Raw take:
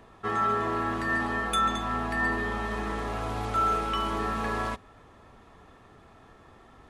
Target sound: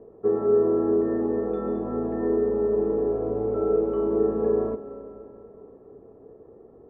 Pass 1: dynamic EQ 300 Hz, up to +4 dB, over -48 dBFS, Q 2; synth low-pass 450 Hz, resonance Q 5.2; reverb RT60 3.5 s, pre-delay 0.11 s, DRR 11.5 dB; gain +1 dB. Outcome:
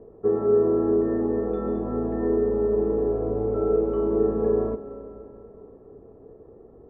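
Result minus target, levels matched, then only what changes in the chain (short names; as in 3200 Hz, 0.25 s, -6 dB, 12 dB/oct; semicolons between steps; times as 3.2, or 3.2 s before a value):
125 Hz band +3.5 dB
add after synth low-pass: low shelf 87 Hz -10.5 dB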